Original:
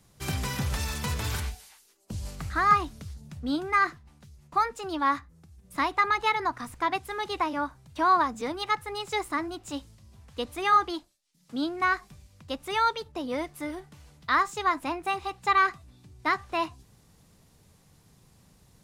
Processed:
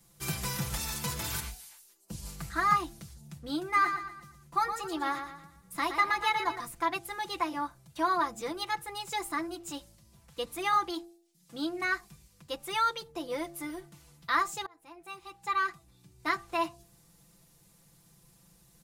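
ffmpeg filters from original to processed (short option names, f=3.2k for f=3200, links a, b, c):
-filter_complex "[0:a]asplit=3[a][b][c];[a]afade=t=out:st=3.75:d=0.02[d];[b]aecho=1:1:117|234|351|468|585:0.398|0.159|0.0637|0.0255|0.0102,afade=t=in:st=3.75:d=0.02,afade=t=out:st=6.59:d=0.02[e];[c]afade=t=in:st=6.59:d=0.02[f];[d][e][f]amix=inputs=3:normalize=0,asplit=2[g][h];[g]atrim=end=14.66,asetpts=PTS-STARTPTS,afade=t=out:st=14.656:d=0.004:c=hsin[i];[h]atrim=start=14.66,asetpts=PTS-STARTPTS,afade=t=in:d=1.6[j];[i][j]concat=n=2:v=0:a=1,highshelf=f=7.7k:g=12,aecho=1:1:5.9:0.76,bandreject=f=113.8:t=h:w=4,bandreject=f=227.6:t=h:w=4,bandreject=f=341.4:t=h:w=4,bandreject=f=455.2:t=h:w=4,bandreject=f=569:t=h:w=4,bandreject=f=682.8:t=h:w=4,bandreject=f=796.6:t=h:w=4,volume=-6dB"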